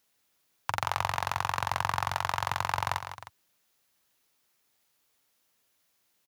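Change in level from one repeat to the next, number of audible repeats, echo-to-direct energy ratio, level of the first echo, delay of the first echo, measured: -4.5 dB, 2, -8.5 dB, -10.0 dB, 0.155 s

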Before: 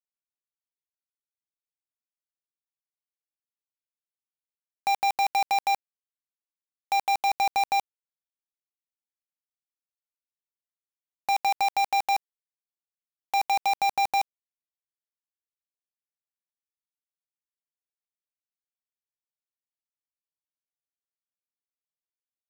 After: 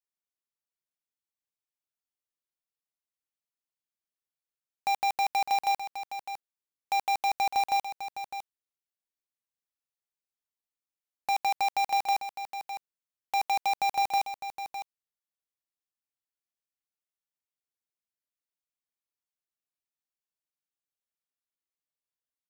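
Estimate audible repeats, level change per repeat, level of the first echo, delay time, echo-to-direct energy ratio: 1, no steady repeat, -10.0 dB, 0.606 s, -10.0 dB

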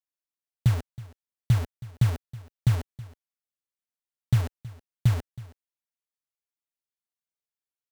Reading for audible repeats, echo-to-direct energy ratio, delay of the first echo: 1, -19.0 dB, 0.321 s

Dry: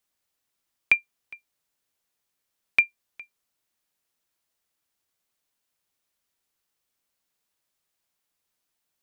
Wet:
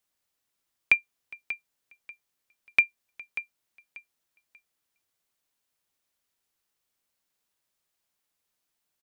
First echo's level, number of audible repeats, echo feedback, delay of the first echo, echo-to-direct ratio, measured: -13.5 dB, 2, 25%, 0.588 s, -13.0 dB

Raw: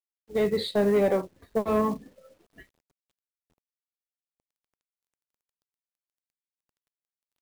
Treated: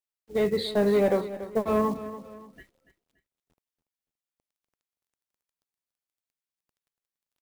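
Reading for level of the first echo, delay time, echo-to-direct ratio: -14.0 dB, 0.286 s, -13.5 dB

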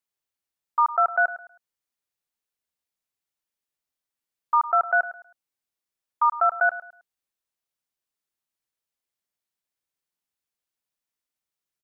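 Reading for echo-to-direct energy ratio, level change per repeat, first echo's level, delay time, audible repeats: -14.5 dB, -11.0 dB, -15.0 dB, 0.106 s, 2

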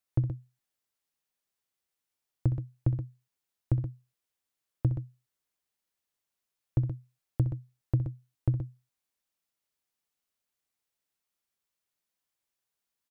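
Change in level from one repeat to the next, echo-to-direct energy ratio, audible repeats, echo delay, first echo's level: no steady repeat, -7.0 dB, 2, 64 ms, -12.0 dB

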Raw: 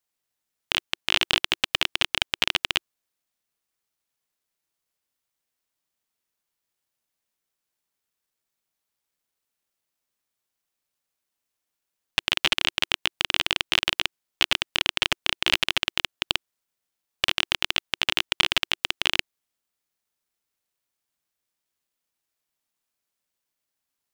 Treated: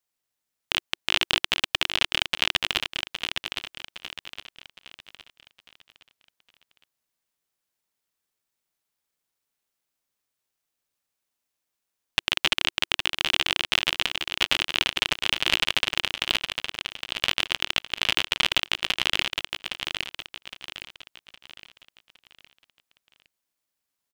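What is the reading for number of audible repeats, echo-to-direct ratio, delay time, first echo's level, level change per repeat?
4, -5.5 dB, 0.813 s, -6.0 dB, -8.0 dB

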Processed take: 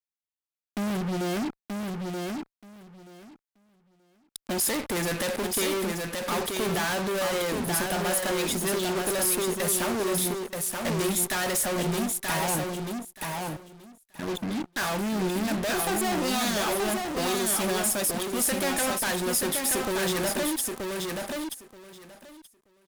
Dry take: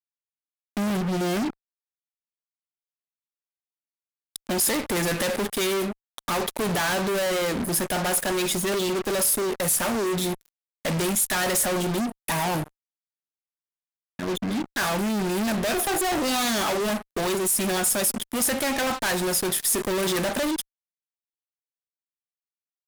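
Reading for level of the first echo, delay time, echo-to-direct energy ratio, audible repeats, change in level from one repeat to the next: -4.0 dB, 0.929 s, -4.0 dB, 2, -16.0 dB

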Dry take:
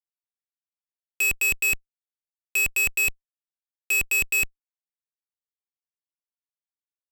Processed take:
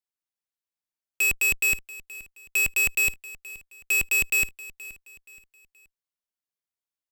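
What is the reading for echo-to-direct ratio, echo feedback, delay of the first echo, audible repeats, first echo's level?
-18.0 dB, 38%, 0.475 s, 2, -18.5 dB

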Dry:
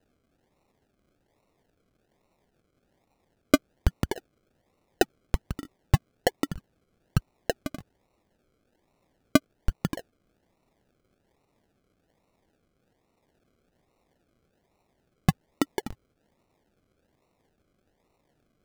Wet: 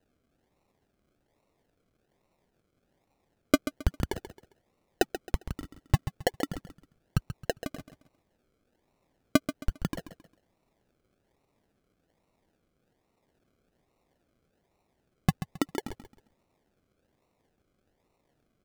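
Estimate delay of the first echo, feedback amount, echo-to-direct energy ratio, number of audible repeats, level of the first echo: 0.134 s, 31%, -11.0 dB, 3, -11.5 dB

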